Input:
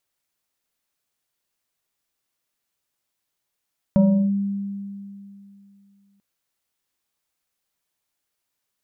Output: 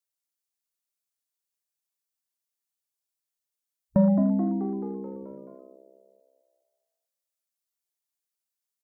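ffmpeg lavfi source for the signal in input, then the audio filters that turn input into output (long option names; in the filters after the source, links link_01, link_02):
-f lavfi -i "aevalsrc='0.282*pow(10,-3*t/2.75)*sin(2*PI*199*t+0.76*clip(1-t/0.35,0,1)*sin(2*PI*1.88*199*t))':duration=2.24:sample_rate=44100"
-filter_complex "[0:a]afwtdn=0.0282,bass=frequency=250:gain=-4,treble=frequency=4000:gain=9,asplit=8[link_01][link_02][link_03][link_04][link_05][link_06][link_07][link_08];[link_02]adelay=216,afreqshift=66,volume=-8.5dB[link_09];[link_03]adelay=432,afreqshift=132,volume=-13.4dB[link_10];[link_04]adelay=648,afreqshift=198,volume=-18.3dB[link_11];[link_05]adelay=864,afreqshift=264,volume=-23.1dB[link_12];[link_06]adelay=1080,afreqshift=330,volume=-28dB[link_13];[link_07]adelay=1296,afreqshift=396,volume=-32.9dB[link_14];[link_08]adelay=1512,afreqshift=462,volume=-37.8dB[link_15];[link_01][link_09][link_10][link_11][link_12][link_13][link_14][link_15]amix=inputs=8:normalize=0"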